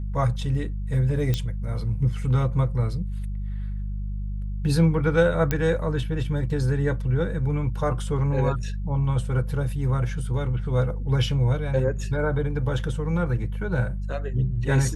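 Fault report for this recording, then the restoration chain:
hum 50 Hz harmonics 4 -29 dBFS
1.34 s: pop -12 dBFS
5.51 s: pop -9 dBFS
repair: de-click; de-hum 50 Hz, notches 4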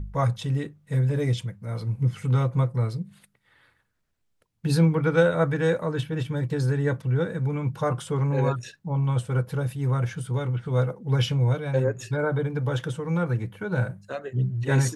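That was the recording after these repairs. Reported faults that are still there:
nothing left

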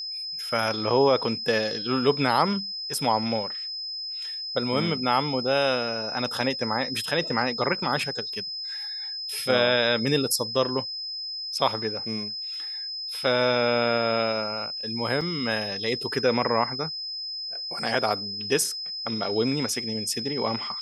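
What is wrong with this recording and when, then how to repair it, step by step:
whine 5.1 kHz -31 dBFS
15.21 s: dropout 4.6 ms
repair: band-stop 5.1 kHz, Q 30; interpolate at 15.21 s, 4.6 ms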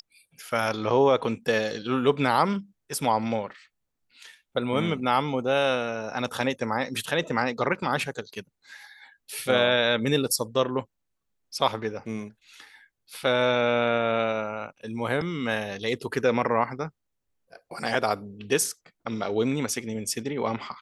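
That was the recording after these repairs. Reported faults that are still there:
nothing left

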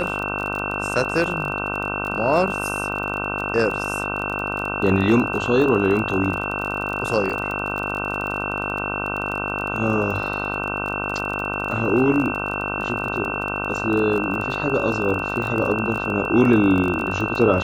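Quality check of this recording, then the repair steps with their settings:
buzz 50 Hz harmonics 31 -28 dBFS
crackle 28 per s -26 dBFS
whine 2.7 kHz -27 dBFS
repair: de-click; de-hum 50 Hz, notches 31; band-stop 2.7 kHz, Q 30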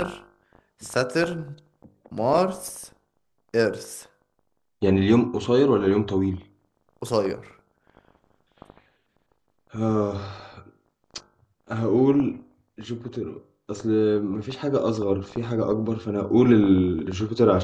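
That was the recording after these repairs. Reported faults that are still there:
nothing left

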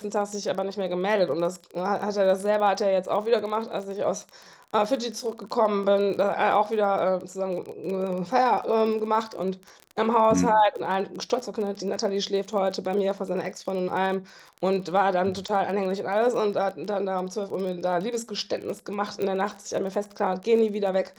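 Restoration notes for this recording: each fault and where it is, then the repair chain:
crackle 25 per s -32 dBFS
19.22 s: pop -18 dBFS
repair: de-click

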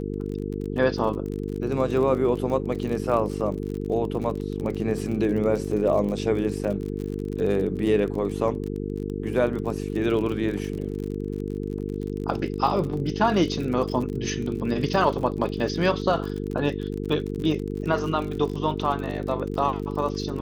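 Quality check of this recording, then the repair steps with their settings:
buzz 50 Hz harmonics 9 -30 dBFS
crackle 43 per s -31 dBFS
14.09 s: dropout 2.7 ms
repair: de-click; de-hum 50 Hz, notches 9; interpolate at 14.09 s, 2.7 ms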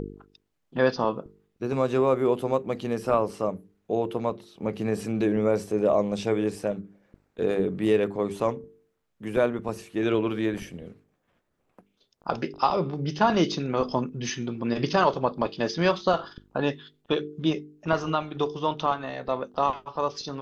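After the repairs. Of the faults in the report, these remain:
nothing left

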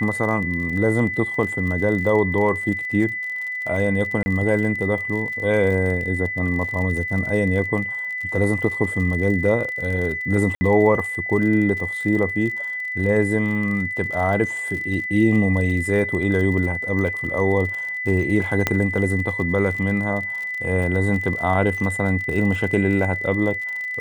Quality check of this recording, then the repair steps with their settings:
crackle 48 per s -29 dBFS
whine 2 kHz -25 dBFS
4.23–4.26 s: dropout 30 ms
10.55–10.61 s: dropout 60 ms
18.67 s: pop -4 dBFS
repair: de-click; band-stop 2 kHz, Q 30; interpolate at 4.23 s, 30 ms; interpolate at 10.55 s, 60 ms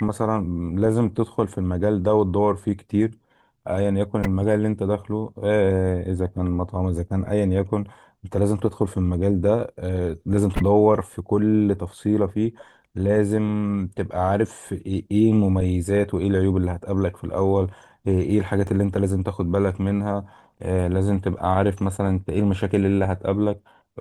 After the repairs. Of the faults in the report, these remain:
18.67 s: pop

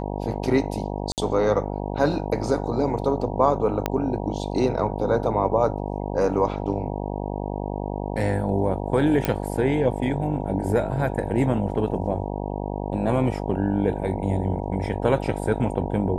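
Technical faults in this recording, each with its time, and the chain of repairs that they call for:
buzz 50 Hz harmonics 19 -29 dBFS
1.12–1.18 s: dropout 58 ms
3.86 s: pop -8 dBFS
9.25 s: pop -8 dBFS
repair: de-click; de-hum 50 Hz, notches 19; interpolate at 1.12 s, 58 ms

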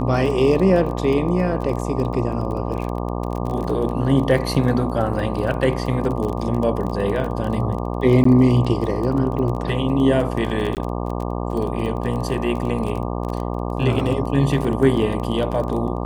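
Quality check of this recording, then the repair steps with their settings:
buzz 60 Hz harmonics 20 -25 dBFS
crackle 25 per s -26 dBFS
8.24–8.25 s: dropout 14 ms
10.75–10.77 s: dropout 18 ms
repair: de-click; de-hum 60 Hz, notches 20; interpolate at 8.24 s, 14 ms; interpolate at 10.75 s, 18 ms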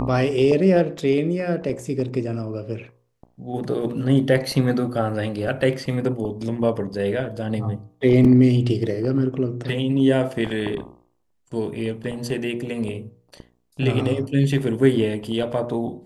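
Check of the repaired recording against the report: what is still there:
nothing left

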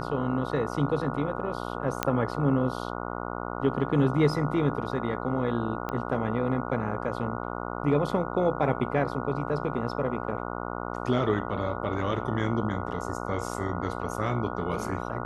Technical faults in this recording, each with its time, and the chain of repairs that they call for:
buzz 60 Hz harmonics 24 -34 dBFS
2.03 s: pop -9 dBFS
5.89 s: pop -19 dBFS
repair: de-click; de-hum 60 Hz, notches 24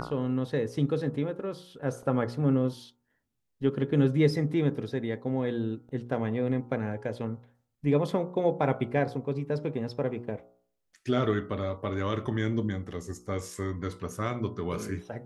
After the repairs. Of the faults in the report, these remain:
5.89 s: pop

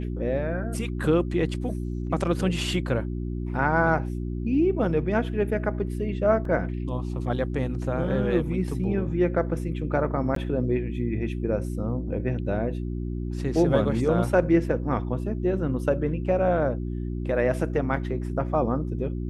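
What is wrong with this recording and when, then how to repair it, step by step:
hum 60 Hz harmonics 6 -30 dBFS
6.45 s: dropout 3.1 ms
10.35–10.36 s: dropout 13 ms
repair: de-hum 60 Hz, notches 6; interpolate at 6.45 s, 3.1 ms; interpolate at 10.35 s, 13 ms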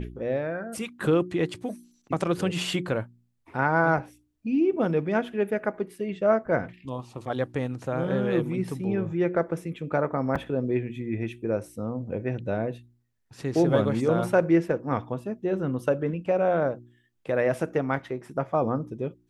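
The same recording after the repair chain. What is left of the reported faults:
nothing left

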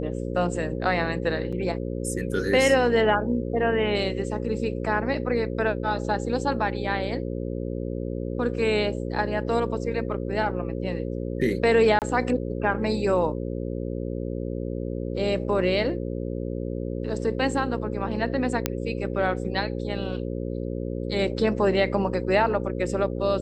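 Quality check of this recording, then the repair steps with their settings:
buzz 60 Hz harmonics 9 -30 dBFS
1.52–1.53 s: dropout 6.3 ms
11.99–12.02 s: dropout 28 ms
18.66 s: pop -6 dBFS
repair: de-click; de-hum 60 Hz, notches 9; interpolate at 1.52 s, 6.3 ms; interpolate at 11.99 s, 28 ms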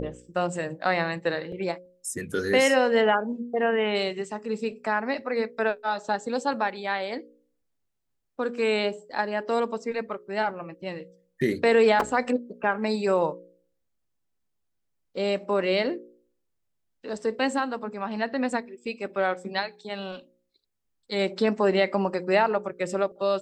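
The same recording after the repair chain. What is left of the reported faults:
nothing left

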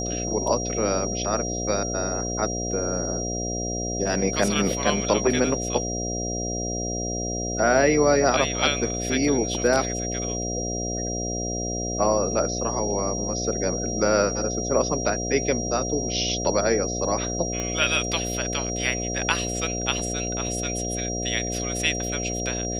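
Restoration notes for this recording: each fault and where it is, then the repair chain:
buzz 60 Hz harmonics 12 -30 dBFS
whine 5.7 kHz -30 dBFS
17.60 s: pop -15 dBFS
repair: de-click; de-hum 60 Hz, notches 12; band-stop 5.7 kHz, Q 30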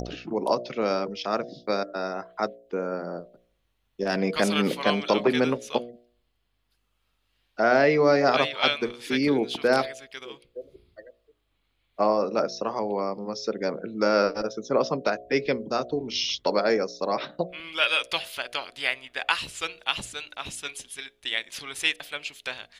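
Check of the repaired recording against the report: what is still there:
17.60 s: pop

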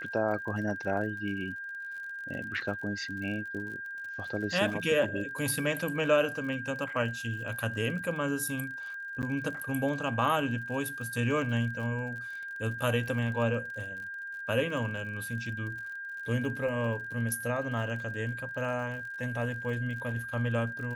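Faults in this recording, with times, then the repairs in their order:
crackle 48 per s -40 dBFS
whine 1.6 kHz -37 dBFS
9.22–9.23 s: dropout 8.4 ms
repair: de-click; band-stop 1.6 kHz, Q 30; interpolate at 9.22 s, 8.4 ms

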